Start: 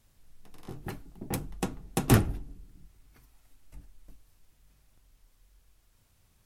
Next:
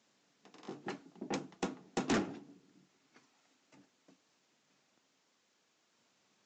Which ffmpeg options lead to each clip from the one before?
-af "highpass=f=210:w=0.5412,highpass=f=210:w=1.3066,aresample=16000,asoftclip=type=tanh:threshold=-27dB,aresample=44100"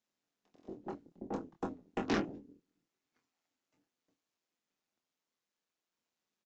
-filter_complex "[0:a]afwtdn=0.00562,tremolo=f=170:d=0.519,asplit=2[a][b];[b]adelay=24,volume=-6.5dB[c];[a][c]amix=inputs=2:normalize=0,volume=1.5dB"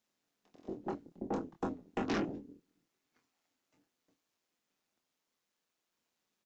-af "alimiter=level_in=6.5dB:limit=-24dB:level=0:latency=1:release=10,volume=-6.5dB,volume=4.5dB"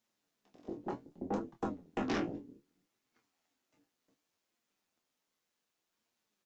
-af "flanger=delay=8.5:depth=9.1:regen=43:speed=0.65:shape=sinusoidal,volume=4dB"

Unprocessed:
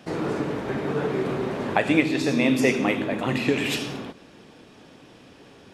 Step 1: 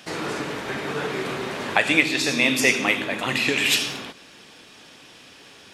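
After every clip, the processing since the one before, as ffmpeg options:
-af "tiltshelf=f=1.1k:g=-8,volume=2.5dB"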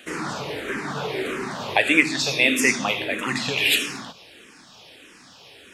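-filter_complex "[0:a]asplit=2[a][b];[b]afreqshift=-1.6[c];[a][c]amix=inputs=2:normalize=1,volume=2.5dB"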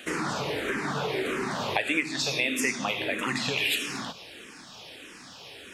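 -af "acompressor=threshold=-29dB:ratio=3,volume=2dB"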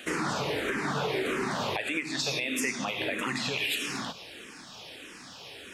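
-af "alimiter=limit=-19.5dB:level=0:latency=1:release=104"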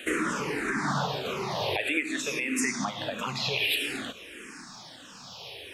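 -filter_complex "[0:a]asplit=2[a][b];[b]afreqshift=-0.5[c];[a][c]amix=inputs=2:normalize=1,volume=4dB"

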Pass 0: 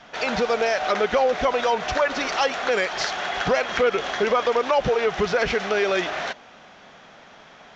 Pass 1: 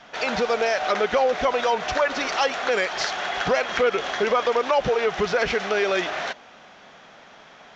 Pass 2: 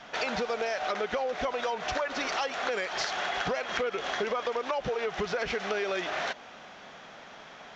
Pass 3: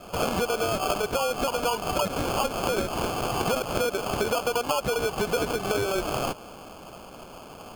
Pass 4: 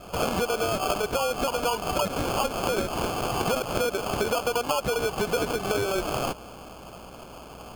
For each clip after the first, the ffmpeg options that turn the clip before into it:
-af "lowshelf=f=200:g=-4"
-af "acompressor=threshold=-28dB:ratio=6"
-af "acrusher=samples=23:mix=1:aa=0.000001,volume=4.5dB"
-af "aeval=exprs='val(0)+0.00282*(sin(2*PI*60*n/s)+sin(2*PI*2*60*n/s)/2+sin(2*PI*3*60*n/s)/3+sin(2*PI*4*60*n/s)/4+sin(2*PI*5*60*n/s)/5)':c=same"

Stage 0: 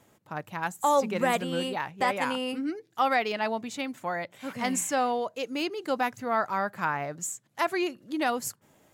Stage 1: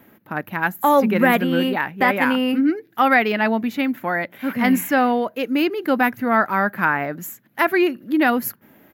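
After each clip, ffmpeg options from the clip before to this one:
-af "firequalizer=gain_entry='entry(140,0);entry(220,10);entry(480,2);entry(1100,1);entry(1600,8);entry(3300,-1);entry(8600,-17);entry(12000,11)':delay=0.05:min_phase=1,volume=5.5dB"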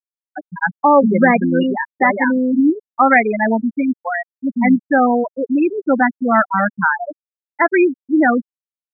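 -af "afftfilt=real='re*gte(hypot(re,im),0.398)':imag='im*gte(hypot(re,im),0.398)':win_size=1024:overlap=0.75,volume=4.5dB"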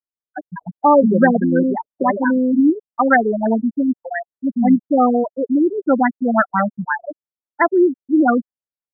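-af "afftfilt=real='re*lt(b*sr/1024,570*pow(2100/570,0.5+0.5*sin(2*PI*5.8*pts/sr)))':imag='im*lt(b*sr/1024,570*pow(2100/570,0.5+0.5*sin(2*PI*5.8*pts/sr)))':win_size=1024:overlap=0.75"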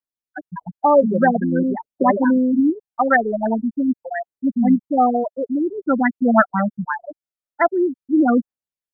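-af "aphaser=in_gain=1:out_gain=1:delay=1.7:decay=0.44:speed=0.47:type=triangular,volume=-2.5dB"

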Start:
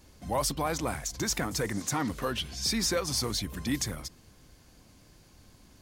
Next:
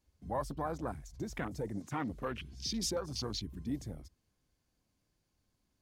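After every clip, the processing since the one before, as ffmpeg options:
-af "afwtdn=0.02,volume=-6dB"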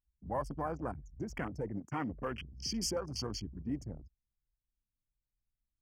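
-af "anlmdn=0.0158,asuperstop=centerf=3800:order=20:qfactor=3.3"

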